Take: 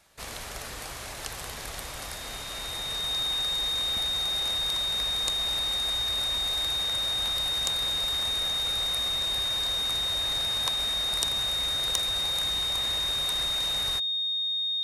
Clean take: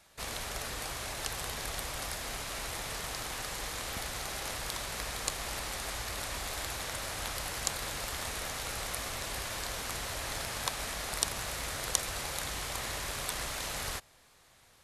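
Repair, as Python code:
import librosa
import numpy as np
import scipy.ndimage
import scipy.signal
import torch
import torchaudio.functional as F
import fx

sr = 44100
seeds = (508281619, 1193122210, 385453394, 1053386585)

y = fx.fix_declip(x, sr, threshold_db=-11.5)
y = fx.notch(y, sr, hz=3700.0, q=30.0)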